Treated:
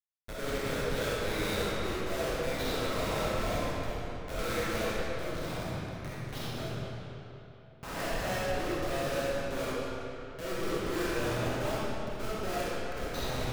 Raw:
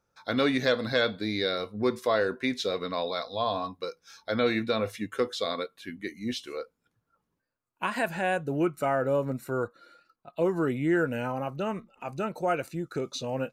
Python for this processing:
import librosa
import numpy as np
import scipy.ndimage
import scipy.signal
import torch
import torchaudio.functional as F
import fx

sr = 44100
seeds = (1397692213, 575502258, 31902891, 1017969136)

y = scipy.signal.sosfilt(scipy.signal.bessel(6, 570.0, 'highpass', norm='mag', fs=sr, output='sos'), x)
y = fx.quant_companded(y, sr, bits=6)
y = fx.rotary(y, sr, hz=0.6)
y = fx.schmitt(y, sr, flips_db=-34.5)
y = fx.ring_mod(y, sr, carrier_hz=130.0, at=(5.01, 7.99))
y = fx.rev_freeverb(y, sr, rt60_s=3.3, hf_ratio=0.75, predelay_ms=5, drr_db=-9.5)
y = y * 10.0 ** (-3.5 / 20.0)